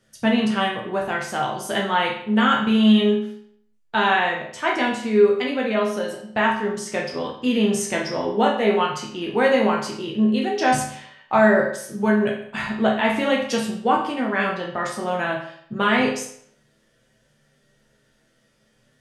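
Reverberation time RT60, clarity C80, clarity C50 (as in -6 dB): 0.65 s, 9.0 dB, 5.0 dB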